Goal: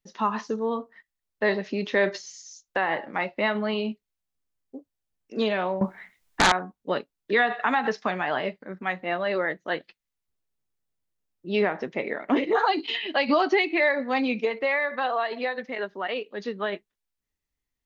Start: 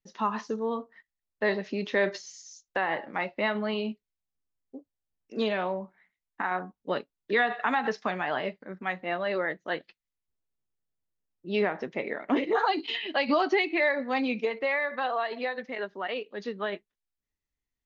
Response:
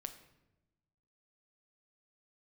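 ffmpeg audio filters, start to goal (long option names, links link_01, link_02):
-filter_complex "[0:a]asettb=1/sr,asplit=3[link_01][link_02][link_03];[link_01]atrim=end=5.814[link_04];[link_02]atrim=start=5.81:end=6.52,asetpts=PTS-STARTPTS,afade=type=in:duration=0.004:curve=qsin,afade=type=out:start_time=0.706:duration=0.004:curve=qsin,aeval=exprs='0.15*sin(PI/2*3.98*val(0)/0.15)':channel_layout=same[link_05];[link_03]atrim=start=6.516[link_06];[link_04][link_05]acrossfade=duration=0.004:curve1=hsin:curve2=qsin[link_07];[link_07][link_06]acrossfade=duration=0.004:curve1=qsin:curve2=hsin,volume=3dB"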